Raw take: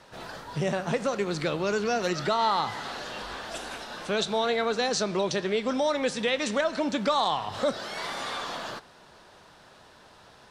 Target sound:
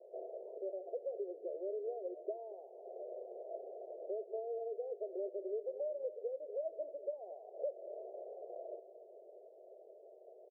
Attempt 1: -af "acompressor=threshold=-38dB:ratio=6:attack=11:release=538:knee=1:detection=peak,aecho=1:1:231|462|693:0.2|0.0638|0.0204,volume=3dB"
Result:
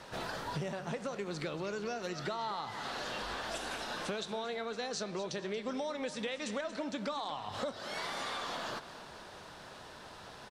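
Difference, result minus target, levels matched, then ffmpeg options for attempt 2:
500 Hz band −5.0 dB
-af "acompressor=threshold=-38dB:ratio=6:attack=11:release=538:knee=1:detection=peak,asuperpass=centerf=500:order=12:qfactor=1.6,aecho=1:1:231|462|693:0.2|0.0638|0.0204,volume=3dB"

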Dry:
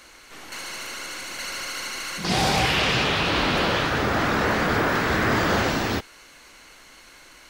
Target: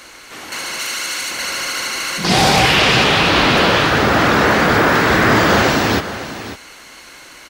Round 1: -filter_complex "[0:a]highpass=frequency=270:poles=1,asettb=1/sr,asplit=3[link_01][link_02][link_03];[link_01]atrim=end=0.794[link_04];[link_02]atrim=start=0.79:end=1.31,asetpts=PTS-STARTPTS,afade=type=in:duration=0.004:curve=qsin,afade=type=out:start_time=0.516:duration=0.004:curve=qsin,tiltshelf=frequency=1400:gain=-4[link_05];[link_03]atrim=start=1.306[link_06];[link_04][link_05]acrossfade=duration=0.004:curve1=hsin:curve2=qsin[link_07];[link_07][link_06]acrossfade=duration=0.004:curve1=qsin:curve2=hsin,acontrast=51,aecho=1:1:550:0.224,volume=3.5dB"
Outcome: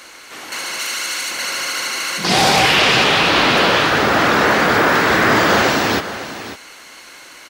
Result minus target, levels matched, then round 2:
125 Hz band −5.0 dB
-filter_complex "[0:a]highpass=frequency=79:poles=1,asettb=1/sr,asplit=3[link_01][link_02][link_03];[link_01]atrim=end=0.794[link_04];[link_02]atrim=start=0.79:end=1.31,asetpts=PTS-STARTPTS,afade=type=in:duration=0.004:curve=qsin,afade=type=out:start_time=0.516:duration=0.004:curve=qsin,tiltshelf=frequency=1400:gain=-4[link_05];[link_03]atrim=start=1.306[link_06];[link_04][link_05]acrossfade=duration=0.004:curve1=hsin:curve2=qsin[link_07];[link_07][link_06]acrossfade=duration=0.004:curve1=qsin:curve2=hsin,acontrast=51,aecho=1:1:550:0.224,volume=3.5dB"

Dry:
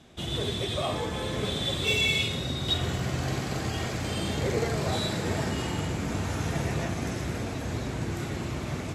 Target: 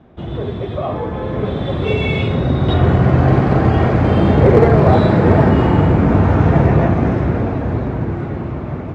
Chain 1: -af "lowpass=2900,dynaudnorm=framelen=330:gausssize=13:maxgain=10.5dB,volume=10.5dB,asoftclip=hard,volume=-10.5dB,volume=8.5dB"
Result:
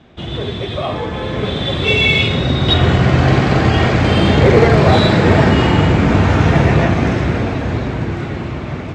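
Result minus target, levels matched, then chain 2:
4,000 Hz band +12.5 dB
-af "lowpass=1200,dynaudnorm=framelen=330:gausssize=13:maxgain=10.5dB,volume=10.5dB,asoftclip=hard,volume=-10.5dB,volume=8.5dB"

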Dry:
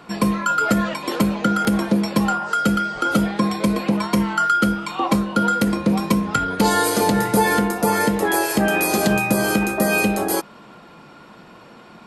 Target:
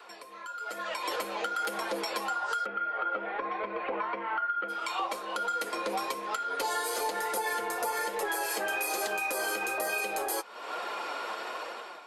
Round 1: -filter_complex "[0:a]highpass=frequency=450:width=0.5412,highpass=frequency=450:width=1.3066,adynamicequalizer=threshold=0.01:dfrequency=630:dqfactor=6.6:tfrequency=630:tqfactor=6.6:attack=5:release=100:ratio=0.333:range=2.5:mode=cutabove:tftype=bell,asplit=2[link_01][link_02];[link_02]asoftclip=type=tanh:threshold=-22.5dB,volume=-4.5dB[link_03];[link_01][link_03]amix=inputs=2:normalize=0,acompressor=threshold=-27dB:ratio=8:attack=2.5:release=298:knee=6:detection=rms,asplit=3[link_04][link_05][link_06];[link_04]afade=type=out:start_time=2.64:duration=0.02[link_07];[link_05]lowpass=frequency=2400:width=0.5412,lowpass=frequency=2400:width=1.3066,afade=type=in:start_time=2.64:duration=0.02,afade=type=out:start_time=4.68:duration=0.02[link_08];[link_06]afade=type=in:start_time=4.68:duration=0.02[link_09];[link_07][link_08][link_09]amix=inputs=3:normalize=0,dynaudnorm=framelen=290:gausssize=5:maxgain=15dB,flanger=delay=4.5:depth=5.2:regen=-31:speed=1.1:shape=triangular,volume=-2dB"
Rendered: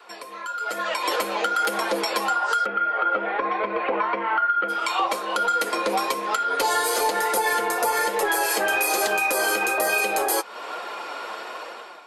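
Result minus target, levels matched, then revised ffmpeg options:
downward compressor: peak gain reduction −8.5 dB; soft clipping: distortion −5 dB
-filter_complex "[0:a]highpass=frequency=450:width=0.5412,highpass=frequency=450:width=1.3066,adynamicequalizer=threshold=0.01:dfrequency=630:dqfactor=6.6:tfrequency=630:tqfactor=6.6:attack=5:release=100:ratio=0.333:range=2.5:mode=cutabove:tftype=bell,asplit=2[link_01][link_02];[link_02]asoftclip=type=tanh:threshold=-30.5dB,volume=-4.5dB[link_03];[link_01][link_03]amix=inputs=2:normalize=0,acompressor=threshold=-37.5dB:ratio=8:attack=2.5:release=298:knee=6:detection=rms,asplit=3[link_04][link_05][link_06];[link_04]afade=type=out:start_time=2.64:duration=0.02[link_07];[link_05]lowpass=frequency=2400:width=0.5412,lowpass=frequency=2400:width=1.3066,afade=type=in:start_time=2.64:duration=0.02,afade=type=out:start_time=4.68:duration=0.02[link_08];[link_06]afade=type=in:start_time=4.68:duration=0.02[link_09];[link_07][link_08][link_09]amix=inputs=3:normalize=0,dynaudnorm=framelen=290:gausssize=5:maxgain=15dB,flanger=delay=4.5:depth=5.2:regen=-31:speed=1.1:shape=triangular,volume=-2dB"

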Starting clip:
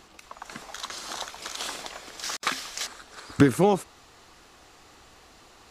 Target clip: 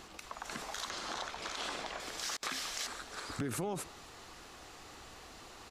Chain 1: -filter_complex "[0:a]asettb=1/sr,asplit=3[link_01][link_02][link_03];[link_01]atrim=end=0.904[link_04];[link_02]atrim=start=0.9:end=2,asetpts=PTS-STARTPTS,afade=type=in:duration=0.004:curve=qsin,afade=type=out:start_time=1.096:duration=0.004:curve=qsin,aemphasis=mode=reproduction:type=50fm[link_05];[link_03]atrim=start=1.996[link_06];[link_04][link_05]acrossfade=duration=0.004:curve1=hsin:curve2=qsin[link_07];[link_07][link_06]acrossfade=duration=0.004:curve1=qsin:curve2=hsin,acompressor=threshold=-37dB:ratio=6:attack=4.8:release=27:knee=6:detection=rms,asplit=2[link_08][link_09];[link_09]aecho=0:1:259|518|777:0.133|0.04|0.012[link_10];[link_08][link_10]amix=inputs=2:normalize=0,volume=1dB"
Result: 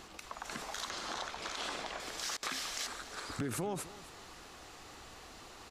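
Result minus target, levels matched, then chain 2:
echo-to-direct +8.5 dB
-filter_complex "[0:a]asettb=1/sr,asplit=3[link_01][link_02][link_03];[link_01]atrim=end=0.904[link_04];[link_02]atrim=start=0.9:end=2,asetpts=PTS-STARTPTS,afade=type=in:duration=0.004:curve=qsin,afade=type=out:start_time=1.096:duration=0.004:curve=qsin,aemphasis=mode=reproduction:type=50fm[link_05];[link_03]atrim=start=1.996[link_06];[link_04][link_05]acrossfade=duration=0.004:curve1=hsin:curve2=qsin[link_07];[link_07][link_06]acrossfade=duration=0.004:curve1=qsin:curve2=hsin,acompressor=threshold=-37dB:ratio=6:attack=4.8:release=27:knee=6:detection=rms,asplit=2[link_08][link_09];[link_09]aecho=0:1:259|518:0.0501|0.015[link_10];[link_08][link_10]amix=inputs=2:normalize=0,volume=1dB"

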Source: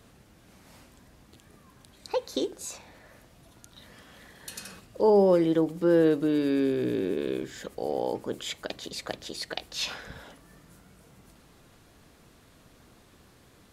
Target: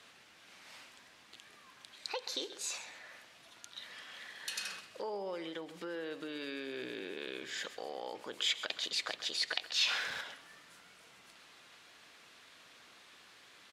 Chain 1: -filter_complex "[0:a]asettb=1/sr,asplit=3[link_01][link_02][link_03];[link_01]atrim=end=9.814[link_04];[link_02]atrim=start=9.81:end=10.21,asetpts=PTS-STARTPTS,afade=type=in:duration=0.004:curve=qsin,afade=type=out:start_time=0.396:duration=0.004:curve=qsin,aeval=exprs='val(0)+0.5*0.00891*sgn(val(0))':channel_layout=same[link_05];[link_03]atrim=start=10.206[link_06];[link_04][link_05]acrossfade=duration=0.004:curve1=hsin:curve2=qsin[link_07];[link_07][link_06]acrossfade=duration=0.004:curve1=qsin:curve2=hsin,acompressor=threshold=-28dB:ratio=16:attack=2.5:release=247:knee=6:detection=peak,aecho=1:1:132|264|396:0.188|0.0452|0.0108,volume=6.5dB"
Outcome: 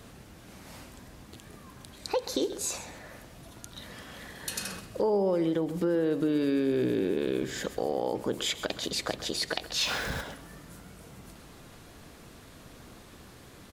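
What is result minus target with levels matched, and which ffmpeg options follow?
2,000 Hz band −6.0 dB
-filter_complex "[0:a]asettb=1/sr,asplit=3[link_01][link_02][link_03];[link_01]atrim=end=9.814[link_04];[link_02]atrim=start=9.81:end=10.21,asetpts=PTS-STARTPTS,afade=type=in:duration=0.004:curve=qsin,afade=type=out:start_time=0.396:duration=0.004:curve=qsin,aeval=exprs='val(0)+0.5*0.00891*sgn(val(0))':channel_layout=same[link_05];[link_03]atrim=start=10.206[link_06];[link_04][link_05]acrossfade=duration=0.004:curve1=hsin:curve2=qsin[link_07];[link_07][link_06]acrossfade=duration=0.004:curve1=qsin:curve2=hsin,acompressor=threshold=-28dB:ratio=16:attack=2.5:release=247:knee=6:detection=peak,bandpass=frequency=2800:width_type=q:width=0.84:csg=0,aecho=1:1:132|264|396:0.188|0.0452|0.0108,volume=6.5dB"

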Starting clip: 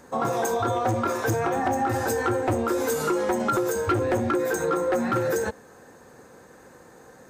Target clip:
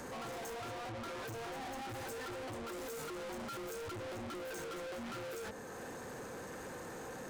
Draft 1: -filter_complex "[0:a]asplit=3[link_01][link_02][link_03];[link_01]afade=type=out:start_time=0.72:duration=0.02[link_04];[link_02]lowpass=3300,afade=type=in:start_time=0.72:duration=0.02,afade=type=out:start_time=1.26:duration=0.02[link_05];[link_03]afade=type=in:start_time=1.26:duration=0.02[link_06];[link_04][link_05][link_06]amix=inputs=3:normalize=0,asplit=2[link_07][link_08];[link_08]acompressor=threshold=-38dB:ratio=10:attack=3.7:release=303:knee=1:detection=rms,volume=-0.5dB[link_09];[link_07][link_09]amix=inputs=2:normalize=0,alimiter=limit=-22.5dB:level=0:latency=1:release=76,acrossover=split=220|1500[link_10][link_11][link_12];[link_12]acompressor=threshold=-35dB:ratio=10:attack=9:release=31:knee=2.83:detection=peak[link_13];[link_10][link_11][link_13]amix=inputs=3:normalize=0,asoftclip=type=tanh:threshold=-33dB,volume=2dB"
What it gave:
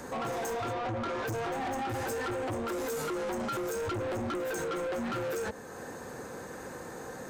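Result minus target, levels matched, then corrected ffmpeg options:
soft clipping: distortion −5 dB
-filter_complex "[0:a]asplit=3[link_01][link_02][link_03];[link_01]afade=type=out:start_time=0.72:duration=0.02[link_04];[link_02]lowpass=3300,afade=type=in:start_time=0.72:duration=0.02,afade=type=out:start_time=1.26:duration=0.02[link_05];[link_03]afade=type=in:start_time=1.26:duration=0.02[link_06];[link_04][link_05][link_06]amix=inputs=3:normalize=0,asplit=2[link_07][link_08];[link_08]acompressor=threshold=-38dB:ratio=10:attack=3.7:release=303:knee=1:detection=rms,volume=-0.5dB[link_09];[link_07][link_09]amix=inputs=2:normalize=0,alimiter=limit=-22.5dB:level=0:latency=1:release=76,acrossover=split=220|1500[link_10][link_11][link_12];[link_12]acompressor=threshold=-35dB:ratio=10:attack=9:release=31:knee=2.83:detection=peak[link_13];[link_10][link_11][link_13]amix=inputs=3:normalize=0,asoftclip=type=tanh:threshold=-44.5dB,volume=2dB"

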